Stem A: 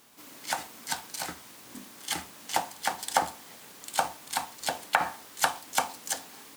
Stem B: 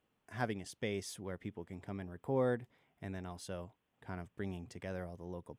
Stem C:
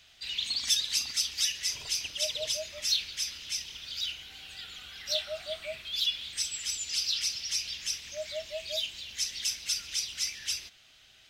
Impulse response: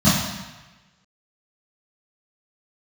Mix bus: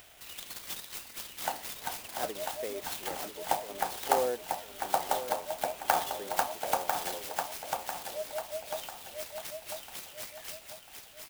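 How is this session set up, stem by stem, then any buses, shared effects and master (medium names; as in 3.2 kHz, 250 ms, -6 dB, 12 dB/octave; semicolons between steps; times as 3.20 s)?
-9.0 dB, 0.95 s, no send, echo send -4.5 dB, gate with hold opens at -36 dBFS
-5.5 dB, 1.80 s, no send, echo send -10.5 dB, Chebyshev high-pass 380 Hz, order 2
-4.0 dB, 0.00 s, no send, echo send -5 dB, compression 1.5:1, threshold -50 dBFS, peak gain reduction 10.5 dB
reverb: none
echo: feedback delay 996 ms, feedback 42%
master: peaking EQ 620 Hz +10 dB 1.7 oct; upward compressor, threshold -48 dBFS; sampling jitter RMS 0.054 ms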